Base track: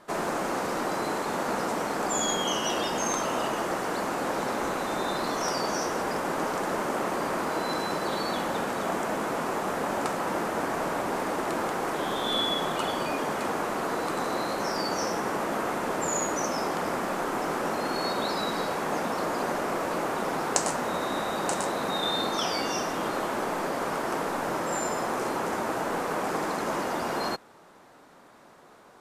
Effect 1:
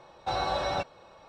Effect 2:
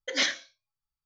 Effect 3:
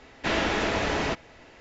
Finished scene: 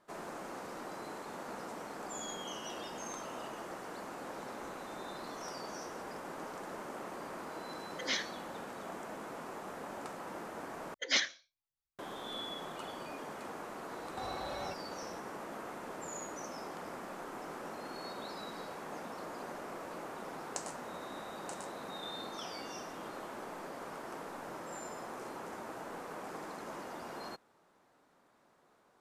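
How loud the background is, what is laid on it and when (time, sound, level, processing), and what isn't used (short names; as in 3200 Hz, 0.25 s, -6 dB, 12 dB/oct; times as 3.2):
base track -15 dB
7.91 add 2 -9 dB
10.94 replace with 2 -2.5 dB + harmonic-percussive split harmonic -10 dB
13.91 add 1 + compressor, threshold -39 dBFS
not used: 3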